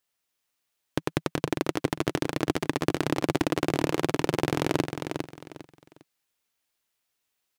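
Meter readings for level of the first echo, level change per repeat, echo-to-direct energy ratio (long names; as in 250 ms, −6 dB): −6.5 dB, −11.5 dB, −6.0 dB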